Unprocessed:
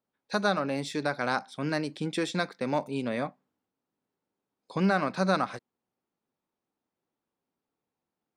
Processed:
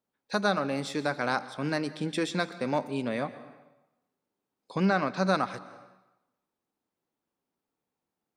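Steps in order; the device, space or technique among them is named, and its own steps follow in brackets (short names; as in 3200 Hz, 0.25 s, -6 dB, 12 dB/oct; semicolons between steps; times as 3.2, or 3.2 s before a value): compressed reverb return (on a send at -12 dB: reverb RT60 0.95 s, pre-delay 0.113 s + compressor, threshold -29 dBFS, peak gain reduction 7.5 dB); 4.85–5.26 on the sum: LPF 7500 Hz 24 dB/oct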